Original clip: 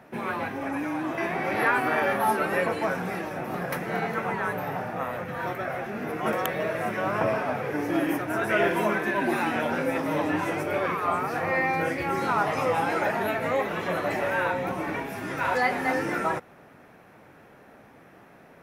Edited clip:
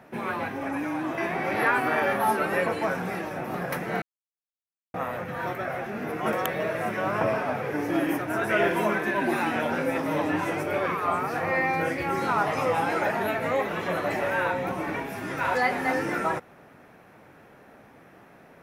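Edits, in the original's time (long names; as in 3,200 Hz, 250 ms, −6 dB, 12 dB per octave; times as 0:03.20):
0:04.02–0:04.94: silence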